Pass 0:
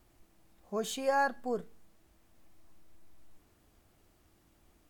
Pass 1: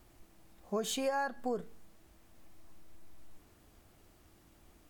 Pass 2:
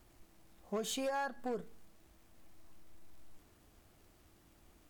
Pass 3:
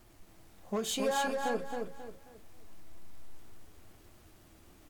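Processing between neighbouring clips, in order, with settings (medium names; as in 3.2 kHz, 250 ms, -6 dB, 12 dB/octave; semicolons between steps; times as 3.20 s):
compression 10:1, threshold -34 dBFS, peak gain reduction 10.5 dB; trim +4 dB
hard clipper -29 dBFS, distortion -19 dB; crackle 200 per s -57 dBFS; trim -2.5 dB
flange 1.2 Hz, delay 7.9 ms, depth 4.7 ms, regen -47%; on a send: feedback delay 269 ms, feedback 33%, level -4 dB; on the sum: trim +8.5 dB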